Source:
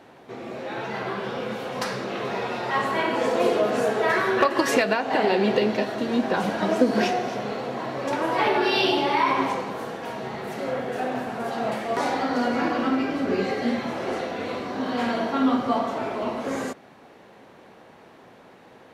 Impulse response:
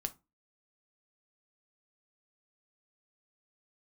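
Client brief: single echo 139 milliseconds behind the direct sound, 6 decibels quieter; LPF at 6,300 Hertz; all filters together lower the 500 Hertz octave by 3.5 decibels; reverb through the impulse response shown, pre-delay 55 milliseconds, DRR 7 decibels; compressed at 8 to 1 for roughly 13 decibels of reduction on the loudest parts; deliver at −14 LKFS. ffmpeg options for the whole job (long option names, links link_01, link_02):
-filter_complex "[0:a]lowpass=6300,equalizer=frequency=500:width_type=o:gain=-4.5,acompressor=threshold=-31dB:ratio=8,aecho=1:1:139:0.501,asplit=2[link_01][link_02];[1:a]atrim=start_sample=2205,adelay=55[link_03];[link_02][link_03]afir=irnorm=-1:irlink=0,volume=-6.5dB[link_04];[link_01][link_04]amix=inputs=2:normalize=0,volume=19dB"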